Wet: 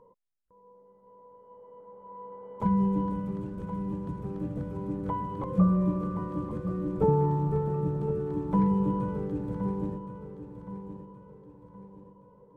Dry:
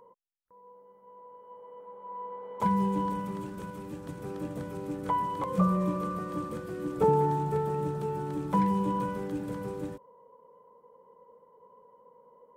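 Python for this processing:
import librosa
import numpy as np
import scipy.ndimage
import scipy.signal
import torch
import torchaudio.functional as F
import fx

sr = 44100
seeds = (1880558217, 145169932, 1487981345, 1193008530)

p1 = fx.tilt_eq(x, sr, slope=-3.5)
p2 = p1 + fx.echo_feedback(p1, sr, ms=1070, feedback_pct=38, wet_db=-11, dry=0)
y = F.gain(torch.from_numpy(p2), -5.0).numpy()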